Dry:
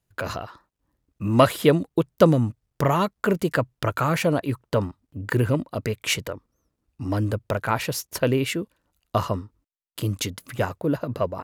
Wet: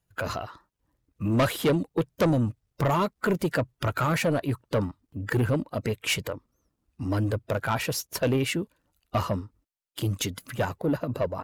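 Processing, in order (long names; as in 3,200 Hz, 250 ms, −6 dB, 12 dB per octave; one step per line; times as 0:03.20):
spectral magnitudes quantised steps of 15 dB
soft clipping −17.5 dBFS, distortion −10 dB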